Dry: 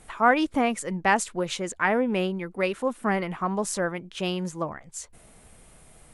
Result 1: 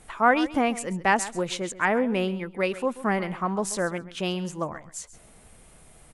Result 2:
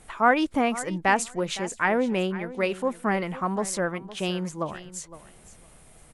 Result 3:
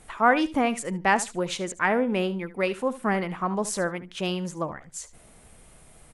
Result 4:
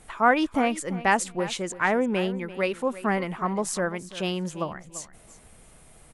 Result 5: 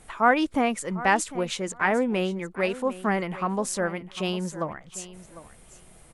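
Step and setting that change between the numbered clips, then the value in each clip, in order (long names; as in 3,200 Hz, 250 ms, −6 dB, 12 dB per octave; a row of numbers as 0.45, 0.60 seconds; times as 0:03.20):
repeating echo, delay time: 134, 511, 73, 340, 751 milliseconds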